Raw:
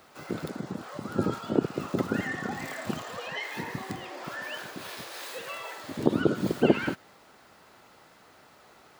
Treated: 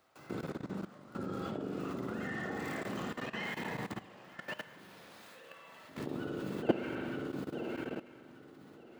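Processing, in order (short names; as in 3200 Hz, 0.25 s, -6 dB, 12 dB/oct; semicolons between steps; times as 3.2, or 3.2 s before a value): swung echo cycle 1.228 s, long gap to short 3:1, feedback 32%, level -9 dB; spring tank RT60 1.1 s, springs 41/56 ms, chirp 30 ms, DRR -1.5 dB; level quantiser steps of 16 dB; gain -6.5 dB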